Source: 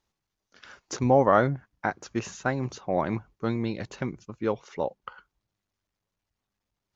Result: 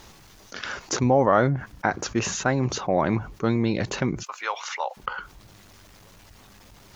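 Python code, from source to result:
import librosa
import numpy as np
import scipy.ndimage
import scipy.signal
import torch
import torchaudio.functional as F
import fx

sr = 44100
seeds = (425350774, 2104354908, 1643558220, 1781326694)

y = fx.highpass(x, sr, hz=860.0, slope=24, at=(4.23, 4.97))
y = fx.env_flatten(y, sr, amount_pct=50)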